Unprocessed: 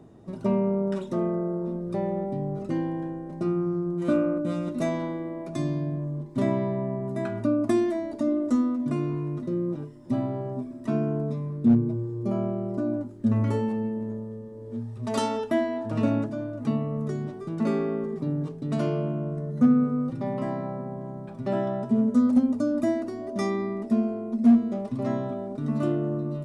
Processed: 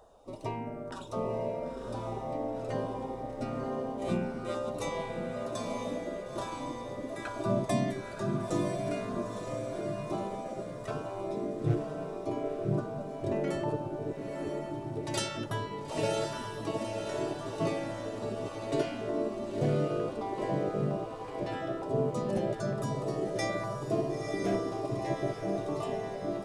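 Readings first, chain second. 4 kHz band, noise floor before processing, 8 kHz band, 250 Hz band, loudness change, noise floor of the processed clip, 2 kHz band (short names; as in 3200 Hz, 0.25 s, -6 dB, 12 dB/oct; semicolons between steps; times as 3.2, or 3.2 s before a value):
+3.5 dB, -40 dBFS, n/a, -11.5 dB, -7.0 dB, -41 dBFS, 0.0 dB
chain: LFO notch saw down 1.1 Hz 850–2300 Hz; diffused feedback echo 0.961 s, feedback 56%, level -4 dB; spectral gate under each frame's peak -10 dB weak; gain +2 dB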